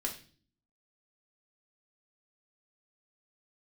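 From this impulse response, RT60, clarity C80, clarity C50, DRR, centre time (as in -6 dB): 0.40 s, 14.5 dB, 10.0 dB, -1.0 dB, 17 ms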